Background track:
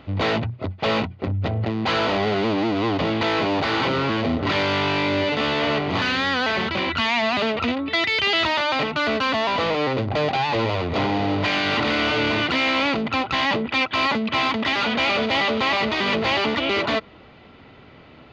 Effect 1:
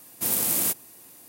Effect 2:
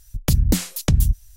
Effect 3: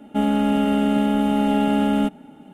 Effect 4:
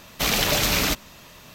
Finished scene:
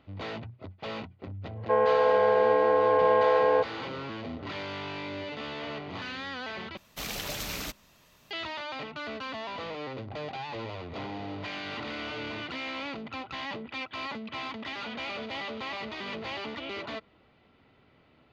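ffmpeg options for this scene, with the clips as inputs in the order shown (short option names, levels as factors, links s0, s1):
-filter_complex "[0:a]volume=0.168[s0];[3:a]highpass=f=240:t=q:w=0.5412,highpass=f=240:t=q:w=1.307,lowpass=f=2100:t=q:w=0.5176,lowpass=f=2100:t=q:w=0.7071,lowpass=f=2100:t=q:w=1.932,afreqshift=230[s1];[s0]asplit=2[s2][s3];[s2]atrim=end=6.774[s4];[4:a]atrim=end=1.54,asetpts=PTS-STARTPTS,volume=0.2[s5];[s3]atrim=start=8.306[s6];[s1]atrim=end=2.53,asetpts=PTS-STARTPTS,volume=0.891,afade=t=in:d=0.1,afade=t=out:st=2.43:d=0.1,adelay=1540[s7];[s4][s5]acrossfade=d=0.004:c1=hsin:c2=hsin[s8];[s8][s6]acrossfade=d=0.004:c1=hsin:c2=hsin[s9];[s9][s7]amix=inputs=2:normalize=0"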